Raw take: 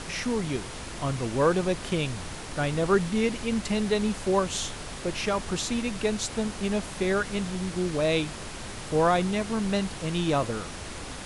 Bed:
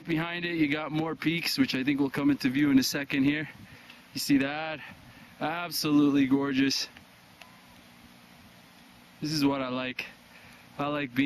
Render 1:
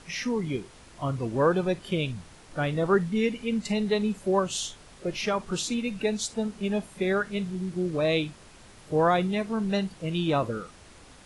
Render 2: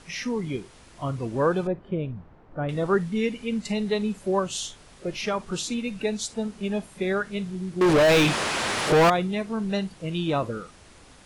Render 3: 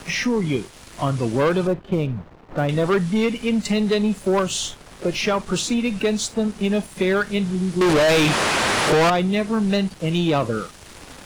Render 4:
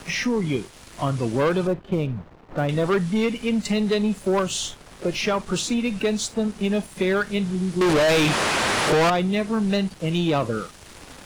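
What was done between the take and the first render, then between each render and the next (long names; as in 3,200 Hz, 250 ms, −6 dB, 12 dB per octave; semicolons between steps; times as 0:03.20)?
noise reduction from a noise print 13 dB
0:01.67–0:02.69: low-pass filter 1,100 Hz; 0:07.81–0:09.10: mid-hump overdrive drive 38 dB, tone 3,100 Hz, clips at −11 dBFS
leveller curve on the samples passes 2; multiband upward and downward compressor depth 40%
level −2 dB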